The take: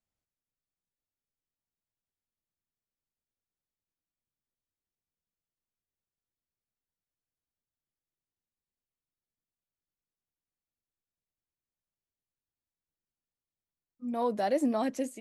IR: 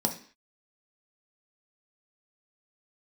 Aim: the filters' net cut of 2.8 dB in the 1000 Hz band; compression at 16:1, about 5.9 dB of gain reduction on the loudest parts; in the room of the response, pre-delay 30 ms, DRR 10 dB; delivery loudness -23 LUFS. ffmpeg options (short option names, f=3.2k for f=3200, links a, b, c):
-filter_complex "[0:a]equalizer=f=1k:t=o:g=-4,acompressor=threshold=-29dB:ratio=16,asplit=2[a][b];[1:a]atrim=start_sample=2205,adelay=30[c];[b][c]afir=irnorm=-1:irlink=0,volume=-17.5dB[d];[a][d]amix=inputs=2:normalize=0,volume=9.5dB"